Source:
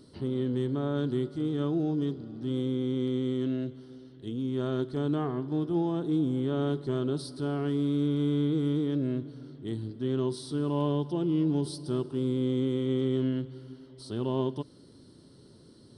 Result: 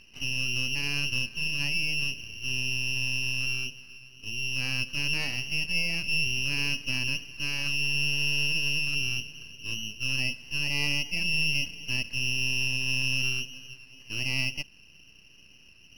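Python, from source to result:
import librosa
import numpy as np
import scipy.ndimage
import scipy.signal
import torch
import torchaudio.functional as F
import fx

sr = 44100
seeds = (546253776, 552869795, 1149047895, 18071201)

y = fx.freq_invert(x, sr, carrier_hz=3000)
y = np.maximum(y, 0.0)
y = y * 10.0 ** (3.5 / 20.0)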